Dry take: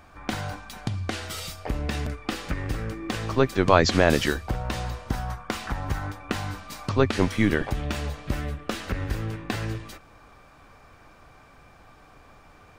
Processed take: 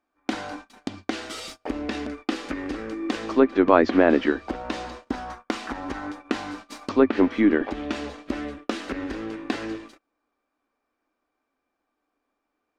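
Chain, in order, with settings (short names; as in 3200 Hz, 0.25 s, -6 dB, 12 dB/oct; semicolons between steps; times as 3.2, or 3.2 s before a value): median filter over 3 samples; treble ducked by the level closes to 2100 Hz, closed at -18 dBFS; resonant low shelf 190 Hz -12.5 dB, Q 3; gate -39 dBFS, range -27 dB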